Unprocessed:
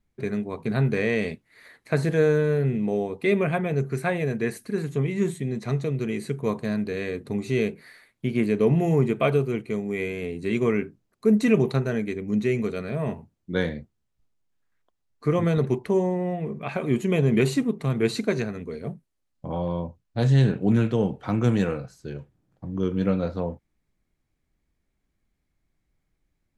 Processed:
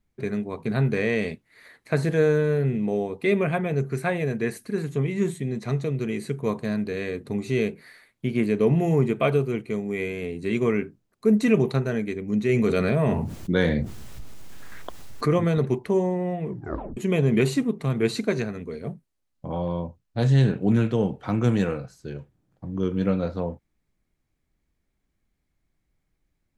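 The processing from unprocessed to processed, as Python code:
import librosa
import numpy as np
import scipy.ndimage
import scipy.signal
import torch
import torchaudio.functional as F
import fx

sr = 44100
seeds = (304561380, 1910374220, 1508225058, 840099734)

y = fx.env_flatten(x, sr, amount_pct=70, at=(12.49, 15.38))
y = fx.edit(y, sr, fx.tape_stop(start_s=16.48, length_s=0.49), tone=tone)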